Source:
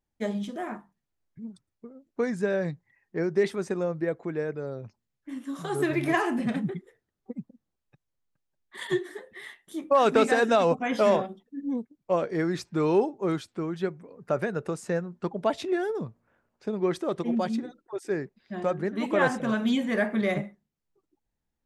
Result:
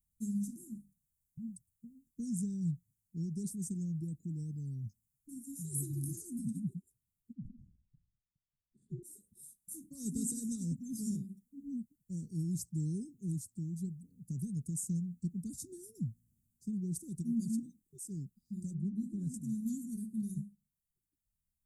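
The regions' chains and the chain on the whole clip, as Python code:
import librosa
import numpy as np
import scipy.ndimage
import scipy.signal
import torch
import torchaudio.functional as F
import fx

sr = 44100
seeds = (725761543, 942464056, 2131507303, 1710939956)

y = fx.chain(x, sr, fx.lowpass(hz=1100.0, slope=12),
    fx.sustainer(db_per_s=68.0), at=(7.33, 9.03))
y = fx.chain(y, sr, fx.lowpass(hz=1500.0, slope=6),
    fx.comb(ms=5.1, depth=0.37), at=(18.74, 19.34))
y = scipy.signal.sosfilt(scipy.signal.cheby2(4, 60, [620.0, 3100.0], 'bandstop', fs=sr, output='sos'), y)
y = fx.tone_stack(y, sr, knobs='5-5-5')
y = fx.rider(y, sr, range_db=4, speed_s=2.0)
y = y * librosa.db_to_amplitude(14.5)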